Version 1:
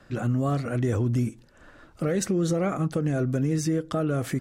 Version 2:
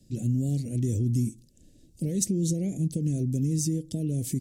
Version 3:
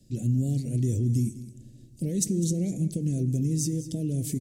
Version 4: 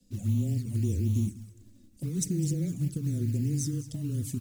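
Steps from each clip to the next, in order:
dynamic bell 2 kHz, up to +5 dB, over -48 dBFS, Q 1.1; Chebyshev band-stop 180–7400 Hz, order 2; tone controls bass -9 dB, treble -2 dB; trim +8 dB
delay 203 ms -15.5 dB; on a send at -16.5 dB: reverberation RT60 2.4 s, pre-delay 4 ms
modulation noise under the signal 24 dB; touch-sensitive flanger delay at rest 4.1 ms, full sweep at -21 dBFS; frequency shift -17 Hz; trim -2 dB

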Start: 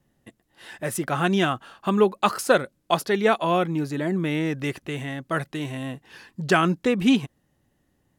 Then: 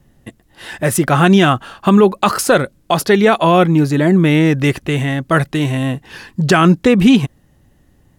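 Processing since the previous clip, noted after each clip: bass shelf 100 Hz +11.5 dB; loudness maximiser +12.5 dB; trim -1 dB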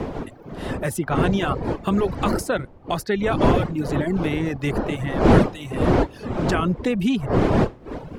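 wind noise 440 Hz -9 dBFS; reverb removal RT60 0.69 s; three bands compressed up and down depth 40%; trim -11.5 dB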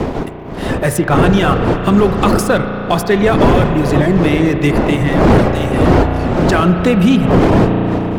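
waveshaping leveller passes 2; reverberation RT60 4.5 s, pre-delay 34 ms, DRR 6.5 dB; loudness maximiser +3.5 dB; trim -1 dB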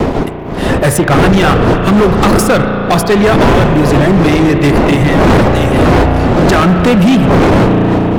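hard clipper -11.5 dBFS, distortion -9 dB; vibrato 4.2 Hz 44 cents; trim +6.5 dB

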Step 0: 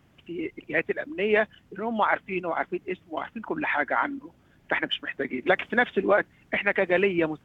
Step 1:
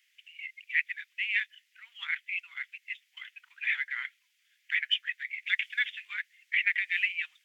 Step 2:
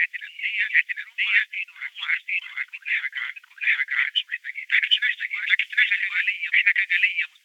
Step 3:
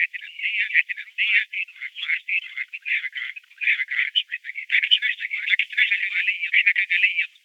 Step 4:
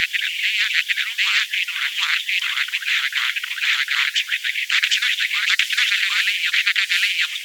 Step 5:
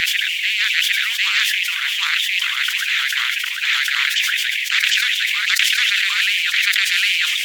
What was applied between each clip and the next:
elliptic high-pass 2 kHz, stop band 70 dB; trim +2.5 dB
reverse echo 755 ms -4 dB; trim +8.5 dB
resonant high-pass 2.4 kHz, resonance Q 1.8; trim -2.5 dB
spectrum-flattening compressor 4:1
decay stretcher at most 21 dB/s

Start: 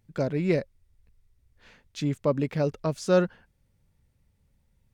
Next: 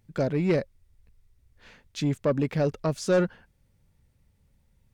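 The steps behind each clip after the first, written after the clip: saturation -18 dBFS, distortion -14 dB; trim +2.5 dB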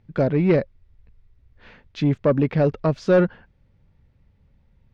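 distance through air 240 m; trim +6.5 dB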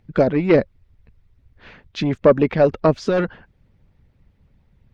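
harmonic-percussive split harmonic -11 dB; trim +7 dB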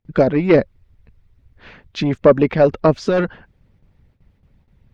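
gate with hold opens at -48 dBFS; trim +2 dB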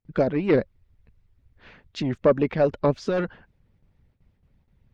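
warped record 78 rpm, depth 160 cents; trim -7.5 dB

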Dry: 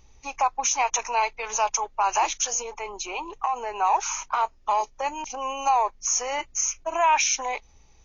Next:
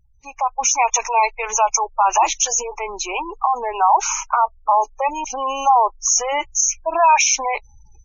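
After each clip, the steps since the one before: spectral gate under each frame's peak -20 dB strong; level rider gain up to 16 dB; trim -4 dB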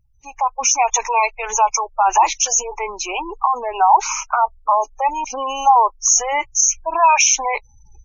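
drifting ripple filter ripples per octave 0.94, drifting +1.7 Hz, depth 7 dB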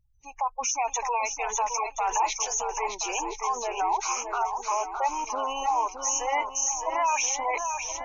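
peak limiter -11.5 dBFS, peak gain reduction 8.5 dB; shuffle delay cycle 1025 ms, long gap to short 1.5:1, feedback 34%, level -6.5 dB; trim -7.5 dB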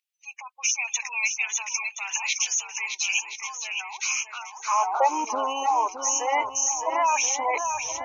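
high-pass sweep 2.5 kHz -> 110 Hz, 4.52–5.49 s; trim +2.5 dB

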